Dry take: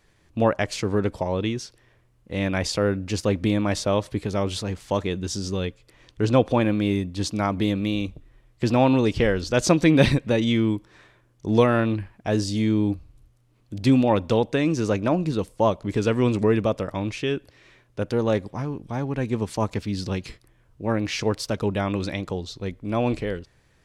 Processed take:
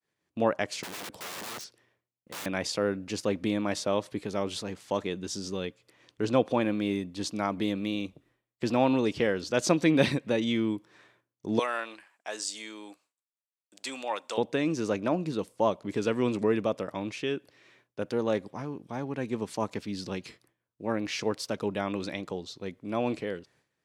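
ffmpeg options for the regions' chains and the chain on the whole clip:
ffmpeg -i in.wav -filter_complex "[0:a]asettb=1/sr,asplit=3[link_01][link_02][link_03];[link_01]atrim=end=0.834[link_04];[link_02]atrim=start=0.83:end=2.46,asetpts=PTS-STARTPTS,afade=type=in:duration=0.004:curve=qsin,afade=type=out:start_time=1.626:duration=0.004:curve=qsin,bandreject=frequency=1600:width=28,aeval=exprs='(mod(28.2*val(0)+1,2)-1)/28.2':channel_layout=same[link_05];[link_03]atrim=start=2.456[link_06];[link_04][link_05]acrossfade=duration=0.004:curve1=hsin:curve2=qsin[link_07];[link_07][link_06]acrossfade=duration=0.004:curve1=qsin:curve2=hsin,asettb=1/sr,asplit=3[link_08][link_09][link_10];[link_08]atrim=end=11.594[link_11];[link_09]atrim=start=11.59:end=14.38,asetpts=PTS-STARTPTS,afade=type=in:duration=0.004:curve=qsin,afade=type=out:start_time=2.786:duration=0.004:curve=qsin,highpass=840,equalizer=frequency=7800:width=2.2:gain=11[link_12];[link_10]atrim=start=14.376[link_13];[link_11][link_12]acrossfade=duration=0.004:curve1=hsin:curve2=qsin[link_14];[link_14][link_13]acrossfade=duration=0.004:curve1=qsin:curve2=hsin,highpass=180,agate=range=-33dB:threshold=-55dB:ratio=3:detection=peak,volume=-5dB" out.wav

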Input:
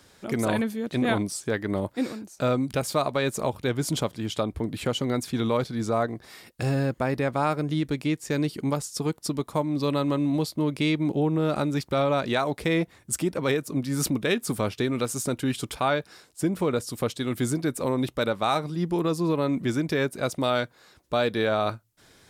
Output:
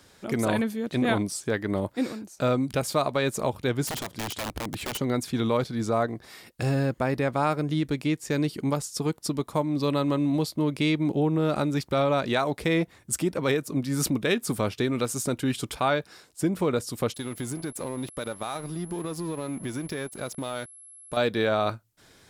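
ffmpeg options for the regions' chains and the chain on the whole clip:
ffmpeg -i in.wav -filter_complex "[0:a]asettb=1/sr,asplit=3[link_01][link_02][link_03];[link_01]atrim=end=3.874[link_04];[link_02]atrim=start=3.87:end=5,asetpts=PTS-STARTPTS,afade=type=in:duration=0.004:curve=qsin,afade=type=out:start_time=1.126:duration=0.004:curve=qsin,acompressor=threshold=-27dB:ratio=3:attack=3.2:release=140:knee=1:detection=peak,aeval=exprs='(mod(20*val(0)+1,2)-1)/20':channel_layout=same[link_05];[link_03]atrim=start=4.996[link_06];[link_04][link_05]acrossfade=duration=0.004:curve1=hsin:curve2=qsin[link_07];[link_07][link_06]acrossfade=duration=0.004:curve1=qsin:curve2=hsin,asettb=1/sr,asplit=3[link_08][link_09][link_10];[link_08]atrim=end=17.144[link_11];[link_09]atrim=start=17.14:end=21.17,asetpts=PTS-STARTPTS,afade=type=in:duration=0.004:curve=qsin,afade=type=out:start_time=4.026:duration=0.004:curve=qsin,acompressor=threshold=-28dB:ratio=4:attack=3.2:release=140:knee=1:detection=peak,aeval=exprs='sgn(val(0))*max(abs(val(0))-0.00531,0)':channel_layout=same,aeval=exprs='val(0)+0.00501*sin(2*PI*11000*n/s)':channel_layout=same[link_12];[link_10]atrim=start=21.166[link_13];[link_11][link_12]acrossfade=duration=0.004:curve1=hsin:curve2=qsin[link_14];[link_14][link_13]acrossfade=duration=0.004:curve1=qsin:curve2=hsin" out.wav

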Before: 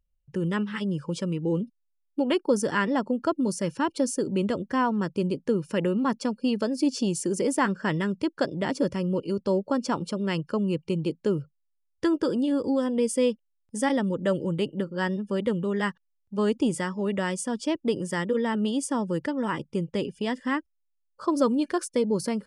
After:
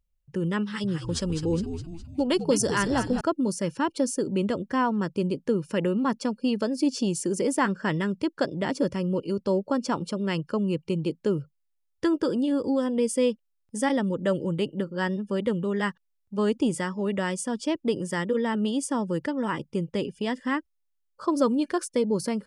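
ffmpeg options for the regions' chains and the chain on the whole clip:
ffmpeg -i in.wav -filter_complex "[0:a]asettb=1/sr,asplit=3[link_01][link_02][link_03];[link_01]atrim=end=0.634[link_04];[link_02]atrim=start=0.63:end=3.21,asetpts=PTS-STARTPTS,afade=type=in:duration=0.004:curve=qsin,afade=type=out:start_time=2.576:duration=0.004:curve=qsin,highshelf=frequency=3400:width_type=q:width=1.5:gain=6.5,asplit=7[link_05][link_06][link_07][link_08][link_09][link_10][link_11];[link_06]adelay=206,afreqshift=-80,volume=-8.5dB[link_12];[link_07]adelay=412,afreqshift=-160,volume=-13.9dB[link_13];[link_08]adelay=618,afreqshift=-240,volume=-19.2dB[link_14];[link_09]adelay=824,afreqshift=-320,volume=-24.6dB[link_15];[link_10]adelay=1030,afreqshift=-400,volume=-29.9dB[link_16];[link_11]adelay=1236,afreqshift=-480,volume=-35.3dB[link_17];[link_05][link_12][link_13][link_14][link_15][link_16][link_17]amix=inputs=7:normalize=0,atrim=end_sample=113778[link_18];[link_03]atrim=start=3.206[link_19];[link_04][link_18]acrossfade=duration=0.004:curve1=hsin:curve2=qsin[link_20];[link_20][link_19]acrossfade=duration=0.004:curve1=qsin:curve2=hsin" out.wav

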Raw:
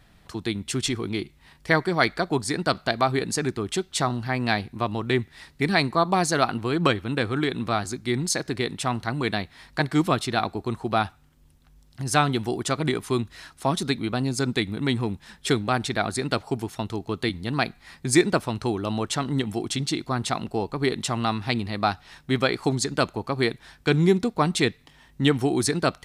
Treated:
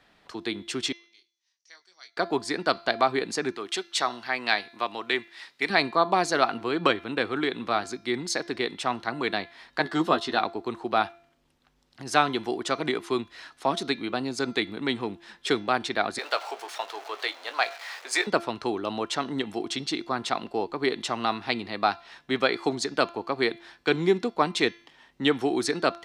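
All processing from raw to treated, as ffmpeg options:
ffmpeg -i in.wav -filter_complex "[0:a]asettb=1/sr,asplit=3[link_01][link_02][link_03];[link_01]atrim=end=0.924[link_04];[link_02]atrim=start=0.92:end=2.17,asetpts=PTS-STARTPTS,afade=type=in:duration=0.004:curve=qsin,afade=type=out:start_time=1.246:duration=0.004:curve=qsin,bandpass=frequency=6000:width_type=q:width=9.7,asplit=2[link_05][link_06];[link_06]adelay=22,volume=-7.5dB[link_07];[link_05][link_07]amix=inputs=2:normalize=0,atrim=end_sample=55125[link_08];[link_03]atrim=start=2.166[link_09];[link_04][link_08]acrossfade=duration=0.004:curve1=hsin:curve2=qsin[link_10];[link_10][link_09]acrossfade=duration=0.004:curve1=qsin:curve2=hsin,asettb=1/sr,asplit=3[link_11][link_12][link_13];[link_11]atrim=end=3.574[link_14];[link_12]atrim=start=3.57:end=5.7,asetpts=PTS-STARTPTS,afade=type=in:duration=0.004:curve=qsin,afade=type=out:start_time=2.126:duration=0.004:curve=qsin,highpass=frequency=300:poles=1,tiltshelf=frequency=1100:gain=-4[link_15];[link_13]atrim=start=5.696[link_16];[link_14][link_15]acrossfade=duration=0.004:curve1=hsin:curve2=qsin[link_17];[link_17][link_16]acrossfade=duration=0.004:curve1=qsin:curve2=hsin,asettb=1/sr,asplit=3[link_18][link_19][link_20];[link_18]atrim=end=9.844[link_21];[link_19]atrim=start=9.84:end=10.38,asetpts=PTS-STARTPTS,afade=type=in:duration=0.004:curve=qsin,afade=type=out:start_time=0.536:duration=0.004:curve=qsin,acrossover=split=6400[link_22][link_23];[link_23]acompressor=threshold=-44dB:ratio=4:attack=1:release=60[link_24];[link_22][link_24]amix=inputs=2:normalize=0,bandreject=frequency=2300:width=5.2,asplit=2[link_25][link_26];[link_26]adelay=12,volume=-5.5dB[link_27];[link_25][link_27]amix=inputs=2:normalize=0,atrim=end_sample=23814[link_28];[link_20]atrim=start=10.376[link_29];[link_21][link_28]acrossfade=duration=0.004:curve1=hsin:curve2=qsin[link_30];[link_30][link_29]acrossfade=duration=0.004:curve1=qsin:curve2=hsin,asettb=1/sr,asplit=3[link_31][link_32][link_33];[link_31]atrim=end=16.184[link_34];[link_32]atrim=start=16.18:end=18.27,asetpts=PTS-STARTPTS,afade=type=in:duration=0.004:curve=qsin,afade=type=out:start_time=2.086:duration=0.004:curve=qsin,aeval=exprs='val(0)+0.5*0.02*sgn(val(0))':channel_layout=same,highpass=frequency=540:width=0.5412,highpass=frequency=540:width=1.3066,asplit=2[link_35][link_36];[link_36]adelay=19,volume=-11dB[link_37];[link_35][link_37]amix=inputs=2:normalize=0,atrim=end_sample=92169[link_38];[link_33]atrim=start=18.266[link_39];[link_34][link_38]acrossfade=duration=0.004:curve1=hsin:curve2=qsin[link_40];[link_40][link_39]acrossfade=duration=0.004:curve1=qsin:curve2=hsin,acrossover=split=250 6000:gain=0.126 1 0.224[link_41][link_42][link_43];[link_41][link_42][link_43]amix=inputs=3:normalize=0,bandreject=frequency=341.7:width_type=h:width=4,bandreject=frequency=683.4:width_type=h:width=4,bandreject=frequency=1025.1:width_type=h:width=4,bandreject=frequency=1366.8:width_type=h:width=4,bandreject=frequency=1708.5:width_type=h:width=4,bandreject=frequency=2050.2:width_type=h:width=4,bandreject=frequency=2391.9:width_type=h:width=4,bandreject=frequency=2733.6:width_type=h:width=4,bandreject=frequency=3075.3:width_type=h:width=4,bandreject=frequency=3417:width_type=h:width=4,bandreject=frequency=3758.7:width_type=h:width=4,bandreject=frequency=4100.4:width_type=h:width=4,bandreject=frequency=4442.1:width_type=h:width=4,bandreject=frequency=4783.8:width_type=h:width=4,bandreject=frequency=5125.5:width_type=h:width=4,bandreject=frequency=5467.2:width_type=h:width=4,bandreject=frequency=5808.9:width_type=h:width=4,bandreject=frequency=6150.6:width_type=h:width=4" out.wav

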